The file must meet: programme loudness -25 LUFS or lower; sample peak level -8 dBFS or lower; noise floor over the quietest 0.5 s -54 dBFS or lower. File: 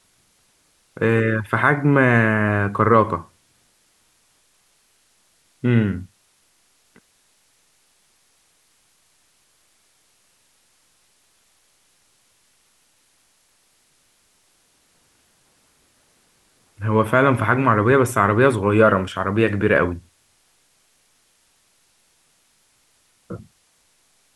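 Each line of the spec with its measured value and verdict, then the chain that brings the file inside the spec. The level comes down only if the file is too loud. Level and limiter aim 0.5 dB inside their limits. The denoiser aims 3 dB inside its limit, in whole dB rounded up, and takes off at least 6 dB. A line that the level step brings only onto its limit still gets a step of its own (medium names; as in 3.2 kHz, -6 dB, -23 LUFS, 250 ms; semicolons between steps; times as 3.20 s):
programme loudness -18.0 LUFS: fail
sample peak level -2.0 dBFS: fail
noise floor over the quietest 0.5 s -62 dBFS: pass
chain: trim -7.5 dB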